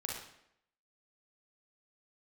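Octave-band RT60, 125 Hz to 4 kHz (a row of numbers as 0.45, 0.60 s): 0.65, 0.75, 0.75, 0.75, 0.70, 0.65 s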